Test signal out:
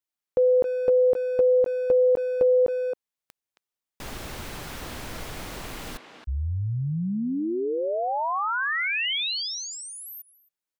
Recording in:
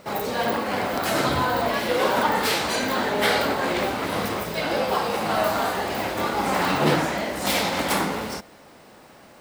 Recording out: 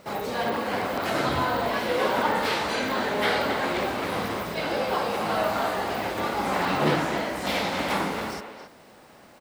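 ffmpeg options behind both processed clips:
-filter_complex "[0:a]asplit=2[a][b];[b]adelay=270,highpass=300,lowpass=3.4k,asoftclip=type=hard:threshold=-14.5dB,volume=-7dB[c];[a][c]amix=inputs=2:normalize=0,acrossover=split=4600[d][e];[e]acompressor=threshold=-39dB:ratio=4:attack=1:release=60[f];[d][f]amix=inputs=2:normalize=0,volume=-3dB"

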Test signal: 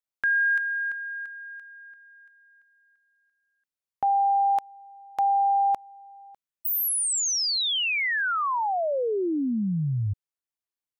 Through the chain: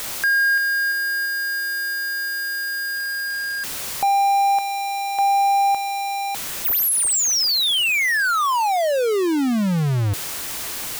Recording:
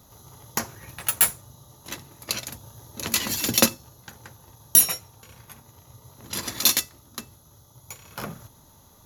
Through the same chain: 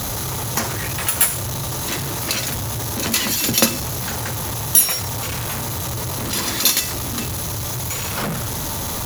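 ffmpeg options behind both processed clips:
-af "aeval=exprs='val(0)+0.5*0.0944*sgn(val(0))':c=same,acrusher=bits=8:mix=0:aa=0.000001,volume=1dB"

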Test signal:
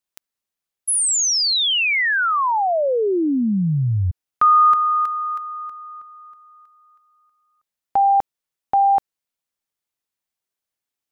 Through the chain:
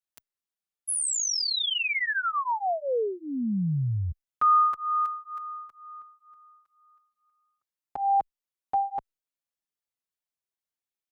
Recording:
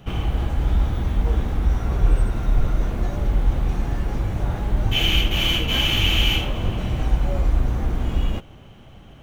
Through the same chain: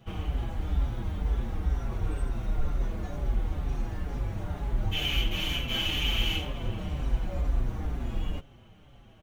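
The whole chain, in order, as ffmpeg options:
-filter_complex "[0:a]asplit=2[a][b];[b]adelay=5.6,afreqshift=-2.1[c];[a][c]amix=inputs=2:normalize=1,volume=-6dB"

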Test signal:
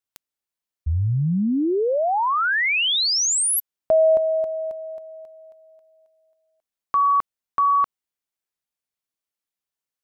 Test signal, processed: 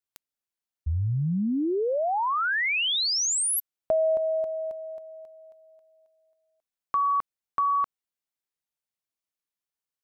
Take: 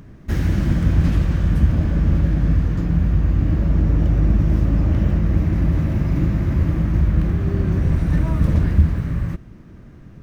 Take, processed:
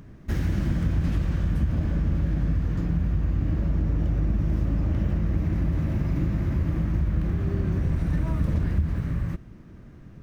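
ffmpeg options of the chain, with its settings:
-af "acompressor=threshold=-18dB:ratio=6:attack=62:release=99:knee=6,volume=-4dB"

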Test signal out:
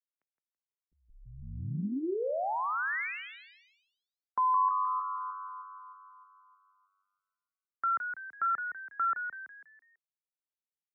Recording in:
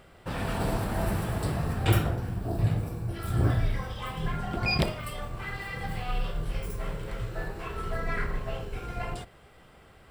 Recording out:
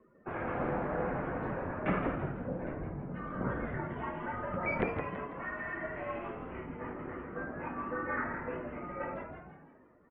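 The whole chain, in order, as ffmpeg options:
-filter_complex "[0:a]afftdn=nr=19:nf=-50,asplit=6[a][b][c][d][e][f];[b]adelay=165,afreqshift=97,volume=-7.5dB[g];[c]adelay=330,afreqshift=194,volume=-15dB[h];[d]adelay=495,afreqshift=291,volume=-22.6dB[i];[e]adelay=660,afreqshift=388,volume=-30.1dB[j];[f]adelay=825,afreqshift=485,volume=-37.6dB[k];[a][g][h][i][j][k]amix=inputs=6:normalize=0,highpass=f=290:t=q:w=0.5412,highpass=f=290:t=q:w=1.307,lowpass=f=2.3k:t=q:w=0.5176,lowpass=f=2.3k:t=q:w=0.7071,lowpass=f=2.3k:t=q:w=1.932,afreqshift=-160,volume=-1dB"

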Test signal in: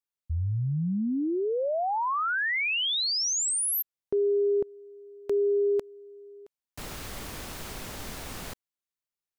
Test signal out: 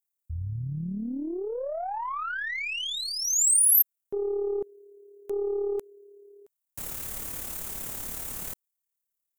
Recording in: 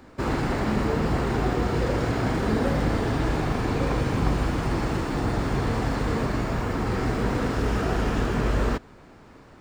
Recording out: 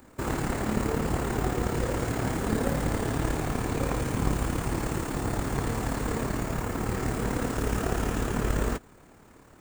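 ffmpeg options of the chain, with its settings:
-af "tremolo=f=36:d=0.462,aeval=exprs='0.282*(cos(1*acos(clip(val(0)/0.282,-1,1)))-cos(1*PI/2))+0.0631*(cos(2*acos(clip(val(0)/0.282,-1,1)))-cos(2*PI/2))+0.00501*(cos(7*acos(clip(val(0)/0.282,-1,1)))-cos(7*PI/2))':c=same,aexciter=amount=5.3:drive=2.5:freq=6.7k,volume=-1.5dB"

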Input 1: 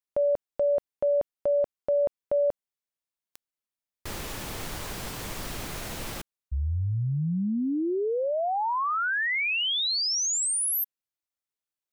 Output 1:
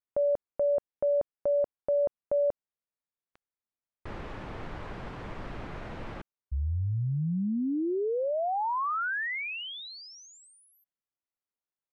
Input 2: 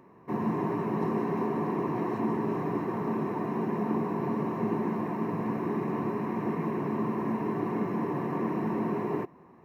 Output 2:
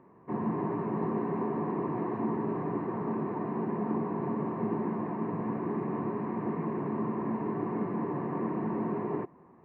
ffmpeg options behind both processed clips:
-af "lowpass=1.8k,volume=-2dB"

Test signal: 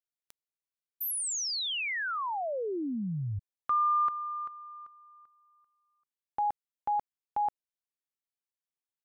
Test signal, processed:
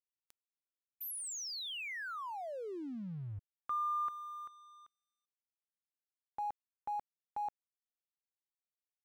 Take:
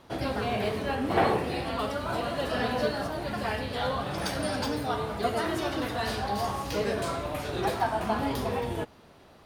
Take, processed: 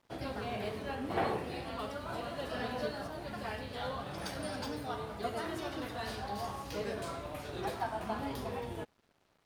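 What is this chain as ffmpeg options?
-af "aeval=exprs='sgn(val(0))*max(abs(val(0))-0.00211,0)':c=same,volume=-8.5dB"

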